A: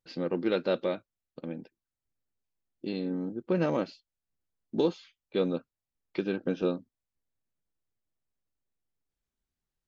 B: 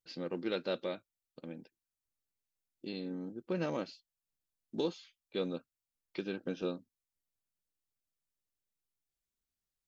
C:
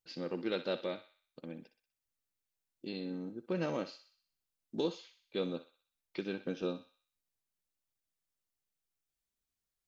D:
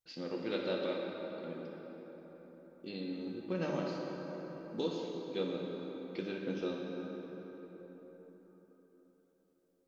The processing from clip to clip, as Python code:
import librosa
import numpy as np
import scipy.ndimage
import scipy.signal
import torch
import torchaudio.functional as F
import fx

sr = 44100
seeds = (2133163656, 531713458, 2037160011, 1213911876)

y1 = fx.high_shelf(x, sr, hz=3000.0, db=9.5)
y1 = y1 * librosa.db_to_amplitude(-8.0)
y2 = fx.echo_thinned(y1, sr, ms=62, feedback_pct=51, hz=870.0, wet_db=-10.5)
y3 = fx.rev_plate(y2, sr, seeds[0], rt60_s=4.8, hf_ratio=0.5, predelay_ms=0, drr_db=-1.0)
y3 = y3 * librosa.db_to_amplitude(-2.5)